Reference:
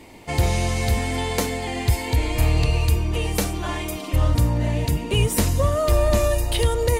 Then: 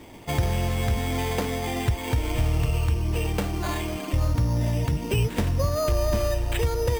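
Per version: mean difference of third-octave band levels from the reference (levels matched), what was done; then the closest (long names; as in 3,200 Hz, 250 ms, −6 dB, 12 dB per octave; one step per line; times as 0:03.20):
3.0 dB: parametric band 130 Hz +3.5 dB 0.77 octaves
downward compressor 2 to 1, threshold −23 dBFS, peak gain reduction 6.5 dB
high-frequency loss of the air 90 metres
bad sample-rate conversion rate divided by 8×, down none, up hold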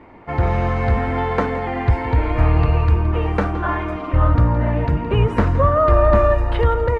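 9.5 dB: automatic gain control gain up to 3.5 dB
low-pass with resonance 1,400 Hz, resonance Q 2.5
single-tap delay 168 ms −14.5 dB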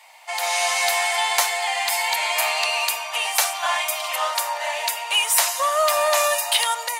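15.5 dB: Butterworth high-pass 680 Hz 48 dB per octave
automatic gain control gain up to 10.5 dB
in parallel at −8 dB: soft clipping −16 dBFS, distortion −14 dB
on the sum: bit reduction 12 bits
level −2.5 dB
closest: first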